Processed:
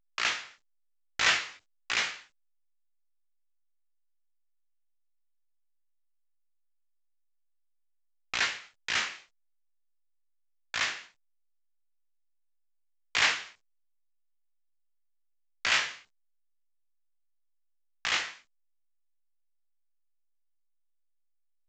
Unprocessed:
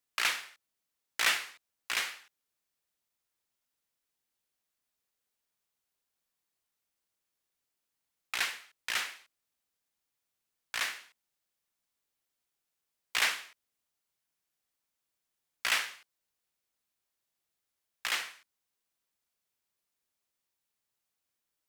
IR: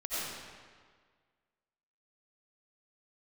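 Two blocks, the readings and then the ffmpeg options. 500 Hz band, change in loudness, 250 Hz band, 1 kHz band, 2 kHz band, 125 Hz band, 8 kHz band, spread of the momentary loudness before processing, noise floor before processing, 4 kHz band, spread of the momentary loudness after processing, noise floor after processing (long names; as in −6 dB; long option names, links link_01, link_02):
+4.5 dB, +3.0 dB, +6.5 dB, +3.5 dB, +3.5 dB, can't be measured, +1.0 dB, 14 LU, below −85 dBFS, +3.5 dB, 17 LU, −72 dBFS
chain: -af "highpass=frequency=55:width=0.5412,highpass=frequency=55:width=1.3066,agate=range=-33dB:threshold=-49dB:ratio=3:detection=peak,lowshelf=frequency=180:gain=10.5,dynaudnorm=framelen=160:gausssize=11:maxgain=3dB,flanger=delay=17:depth=7.3:speed=0.48,acrusher=bits=3:mode=log:mix=0:aa=0.000001,volume=3.5dB" -ar 16000 -c:a pcm_alaw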